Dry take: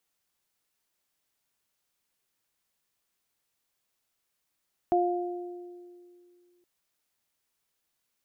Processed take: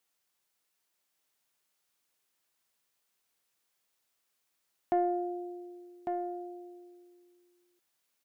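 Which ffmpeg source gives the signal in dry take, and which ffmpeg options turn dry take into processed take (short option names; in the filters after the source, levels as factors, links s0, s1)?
-f lavfi -i "aevalsrc='0.0708*pow(10,-3*t/2.43)*sin(2*PI*353*t)+0.0841*pow(10,-3*t/1.33)*sin(2*PI*706*t)':d=1.72:s=44100"
-filter_complex "[0:a]lowshelf=f=170:g=-9,asoftclip=type=tanh:threshold=0.112,asplit=2[s0][s1];[s1]aecho=0:1:1151:0.501[s2];[s0][s2]amix=inputs=2:normalize=0"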